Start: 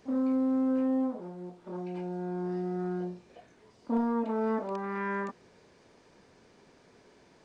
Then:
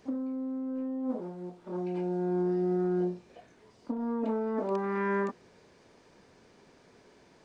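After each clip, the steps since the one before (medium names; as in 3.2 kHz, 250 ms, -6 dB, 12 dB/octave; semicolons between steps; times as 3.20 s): dynamic bell 330 Hz, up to +7 dB, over -41 dBFS, Q 0.96; compressor with a negative ratio -28 dBFS, ratio -1; trim -2.5 dB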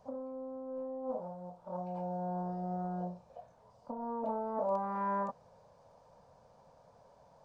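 FFT filter 150 Hz 0 dB, 370 Hz -20 dB, 530 Hz +5 dB, 950 Hz +4 dB, 2 kHz -17 dB, 5.3 kHz -9 dB; trim -1 dB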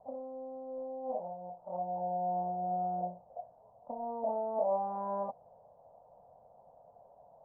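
resonant low-pass 720 Hz, resonance Q 4.9; trim -6 dB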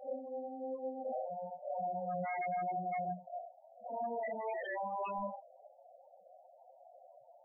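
phase randomisation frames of 200 ms; wavefolder -33 dBFS; loudest bins only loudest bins 8; trim +1.5 dB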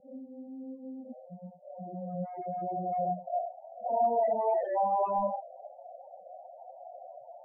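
low-pass sweep 200 Hz -> 770 Hz, 1.08–3.62 s; trim +5 dB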